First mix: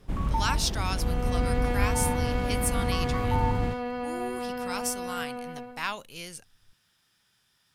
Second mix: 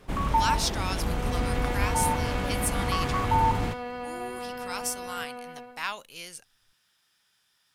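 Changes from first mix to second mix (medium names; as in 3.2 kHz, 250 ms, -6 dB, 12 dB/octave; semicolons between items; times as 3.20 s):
first sound +8.5 dB; master: add bass shelf 310 Hz -11 dB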